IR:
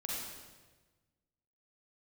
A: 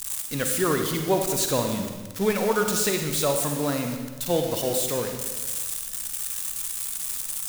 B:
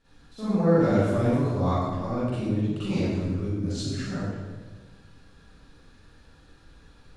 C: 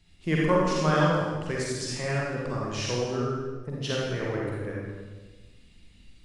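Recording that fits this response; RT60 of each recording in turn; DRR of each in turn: C; 1.3 s, 1.3 s, 1.3 s; 4.0 dB, -14.0 dB, -4.5 dB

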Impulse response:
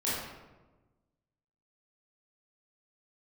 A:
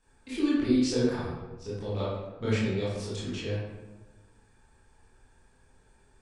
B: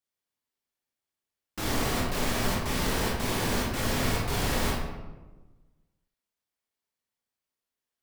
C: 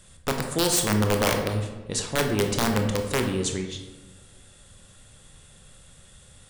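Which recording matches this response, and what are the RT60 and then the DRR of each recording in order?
A; 1.2 s, 1.2 s, 1.2 s; -9.5 dB, -4.5 dB, 3.5 dB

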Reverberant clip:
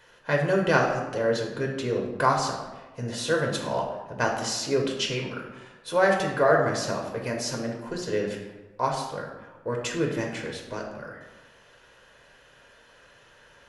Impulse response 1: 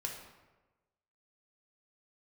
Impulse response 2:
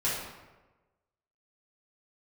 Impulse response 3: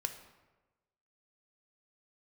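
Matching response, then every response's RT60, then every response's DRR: 1; 1.2 s, 1.2 s, 1.2 s; 0.0 dB, -9.5 dB, 6.5 dB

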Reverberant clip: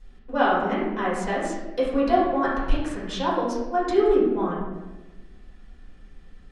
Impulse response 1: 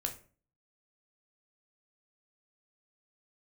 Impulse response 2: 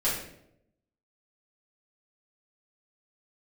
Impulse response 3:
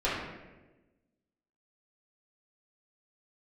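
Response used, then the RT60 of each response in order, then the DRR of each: 3; 0.40 s, 0.75 s, 1.2 s; 3.0 dB, -9.5 dB, -9.0 dB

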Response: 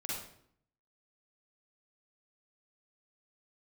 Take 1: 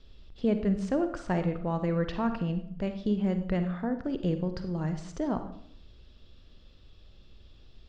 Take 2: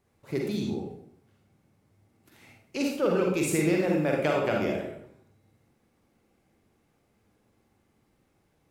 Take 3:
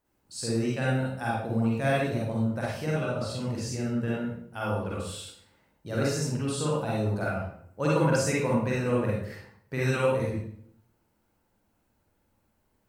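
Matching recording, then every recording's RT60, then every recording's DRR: 3; 0.65 s, 0.65 s, 0.65 s; 8.0 dB, -1.0 dB, -6.0 dB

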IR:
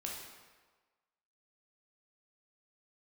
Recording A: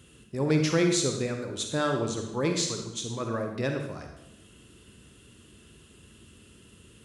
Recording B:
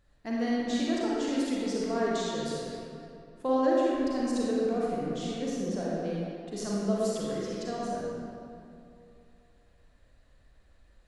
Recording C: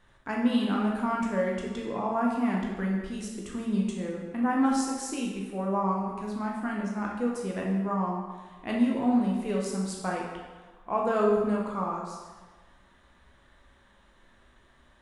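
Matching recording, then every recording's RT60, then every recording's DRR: C; 0.85 s, 2.6 s, 1.4 s; 3.5 dB, -6.0 dB, -2.5 dB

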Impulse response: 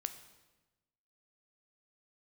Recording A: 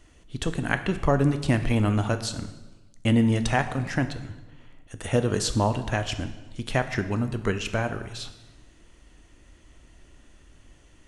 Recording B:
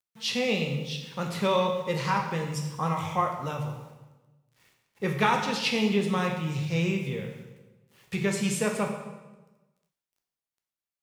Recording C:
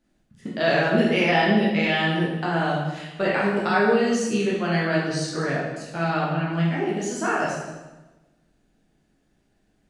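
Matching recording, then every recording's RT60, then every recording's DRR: A; 1.1 s, 1.1 s, 1.1 s; 9.0 dB, 2.0 dB, -6.5 dB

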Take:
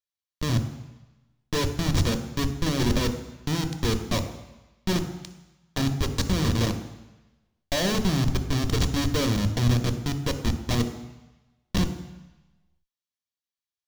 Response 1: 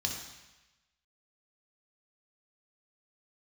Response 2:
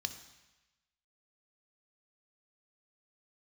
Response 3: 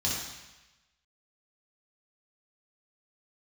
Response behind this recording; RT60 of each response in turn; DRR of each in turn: 2; 1.0 s, 1.1 s, 1.0 s; 0.5 dB, 8.0 dB, -6.5 dB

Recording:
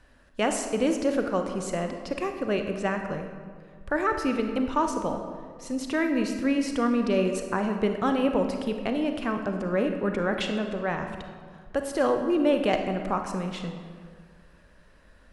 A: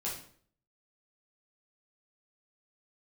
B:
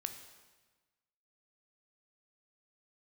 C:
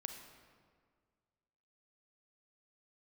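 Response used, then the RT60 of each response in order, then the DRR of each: C; 0.55 s, 1.3 s, 1.8 s; -6.5 dB, 6.5 dB, 5.0 dB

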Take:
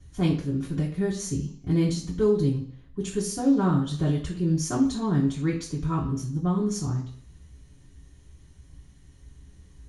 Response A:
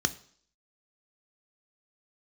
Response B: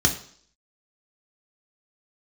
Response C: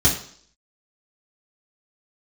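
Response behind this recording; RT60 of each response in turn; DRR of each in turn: C; 0.55 s, 0.55 s, 0.55 s; 10.0 dB, 1.5 dB, -6.5 dB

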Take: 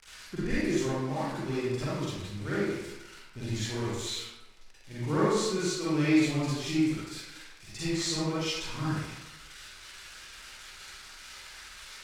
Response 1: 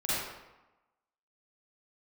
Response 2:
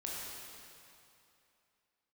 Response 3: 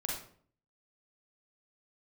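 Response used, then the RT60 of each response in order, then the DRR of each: 1; 1.0 s, 2.7 s, 0.55 s; -11.0 dB, -5.0 dB, -2.5 dB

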